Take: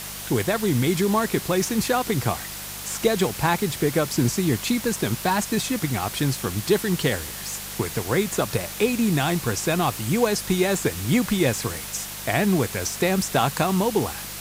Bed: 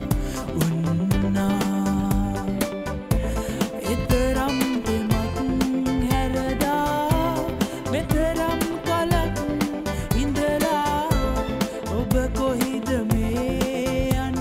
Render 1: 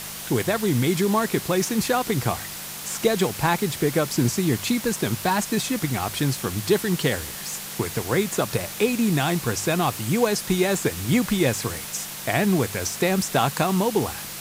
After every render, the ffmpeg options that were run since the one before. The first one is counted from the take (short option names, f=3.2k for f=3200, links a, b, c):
-af "bandreject=f=50:t=h:w=4,bandreject=f=100:t=h:w=4"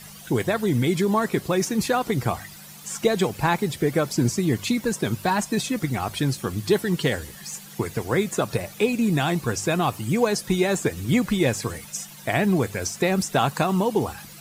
-af "afftdn=nr=13:nf=-35"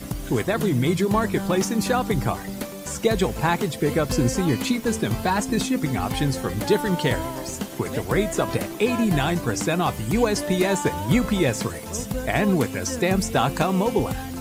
-filter_complex "[1:a]volume=-7.5dB[a];[0:a][a]amix=inputs=2:normalize=0"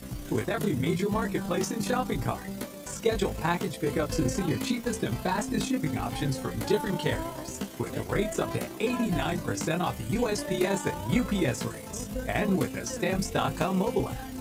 -af "tremolo=f=31:d=0.75,flanger=delay=15.5:depth=4.5:speed=0.79"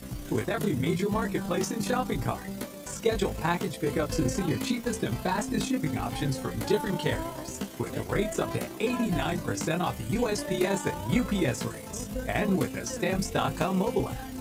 -af anull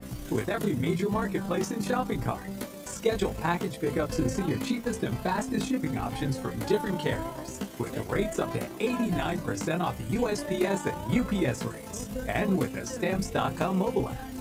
-af "bandreject=f=50:t=h:w=6,bandreject=f=100:t=h:w=6,bandreject=f=150:t=h:w=6,adynamicequalizer=threshold=0.00501:dfrequency=2500:dqfactor=0.7:tfrequency=2500:tqfactor=0.7:attack=5:release=100:ratio=0.375:range=2:mode=cutabove:tftype=highshelf"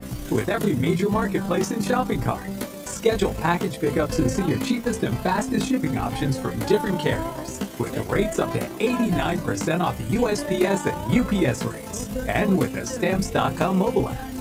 -af "volume=6dB"